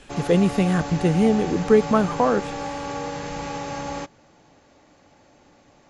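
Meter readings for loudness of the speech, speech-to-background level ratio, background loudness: −20.5 LKFS, 10.5 dB, −31.0 LKFS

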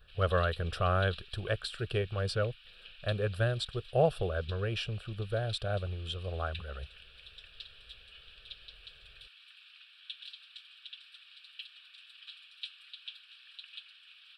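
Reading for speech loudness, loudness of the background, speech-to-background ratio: −33.5 LKFS, −49.5 LKFS, 16.0 dB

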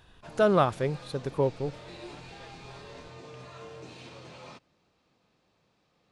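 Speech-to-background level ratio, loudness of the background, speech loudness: 18.5 dB, −46.5 LKFS, −28.0 LKFS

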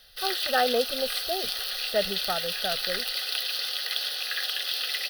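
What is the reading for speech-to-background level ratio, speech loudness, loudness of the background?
−2.5 dB, −30.5 LKFS, −28.0 LKFS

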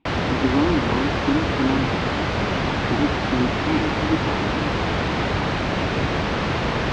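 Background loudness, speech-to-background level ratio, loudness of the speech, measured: −23.0 LKFS, −2.5 dB, −25.5 LKFS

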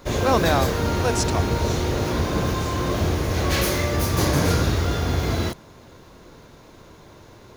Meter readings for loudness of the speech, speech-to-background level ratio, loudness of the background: −25.0 LKFS, −2.0 dB, −23.0 LKFS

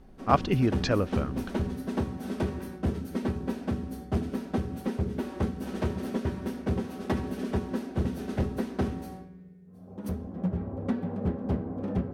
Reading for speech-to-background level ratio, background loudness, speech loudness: 4.5 dB, −32.5 LKFS, −28.0 LKFS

